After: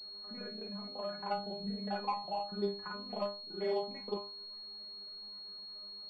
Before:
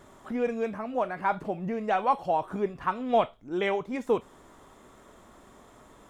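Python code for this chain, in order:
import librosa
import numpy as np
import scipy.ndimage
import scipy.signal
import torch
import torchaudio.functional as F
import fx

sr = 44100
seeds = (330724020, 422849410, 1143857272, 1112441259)

y = fx.local_reverse(x, sr, ms=34.0)
y = fx.stiff_resonator(y, sr, f0_hz=200.0, decay_s=0.34, stiffness=0.002)
y = fx.pwm(y, sr, carrier_hz=4300.0)
y = y * 10.0 ** (2.0 / 20.0)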